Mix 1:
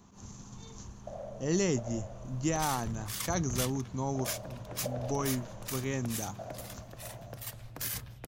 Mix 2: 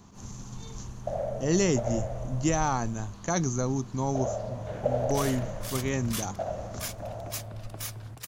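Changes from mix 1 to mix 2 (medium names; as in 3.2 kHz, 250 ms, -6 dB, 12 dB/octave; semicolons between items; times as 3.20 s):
speech +4.5 dB; first sound +11.0 dB; second sound: entry +2.55 s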